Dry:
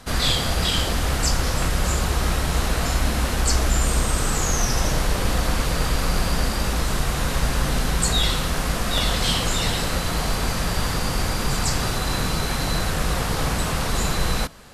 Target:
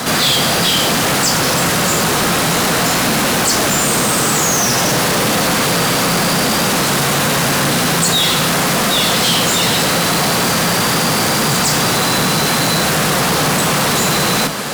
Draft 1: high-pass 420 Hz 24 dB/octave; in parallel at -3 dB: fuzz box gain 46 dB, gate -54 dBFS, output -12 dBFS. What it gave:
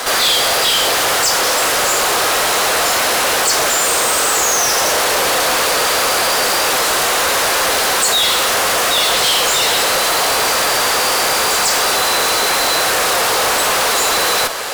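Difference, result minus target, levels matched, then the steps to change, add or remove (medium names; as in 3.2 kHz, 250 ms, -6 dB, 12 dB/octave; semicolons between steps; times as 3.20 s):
125 Hz band -17.5 dB
change: high-pass 140 Hz 24 dB/octave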